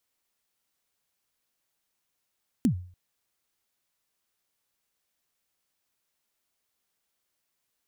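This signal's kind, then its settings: kick drum length 0.29 s, from 280 Hz, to 90 Hz, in 96 ms, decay 0.46 s, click on, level -16 dB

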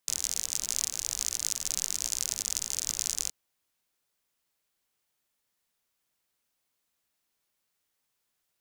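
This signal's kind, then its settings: rain from filtered ticks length 3.22 s, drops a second 59, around 6500 Hz, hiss -18 dB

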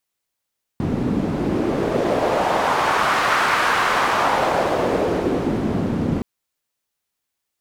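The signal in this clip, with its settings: wind-like swept noise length 5.42 s, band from 210 Hz, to 1300 Hz, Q 1.6, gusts 1, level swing 3 dB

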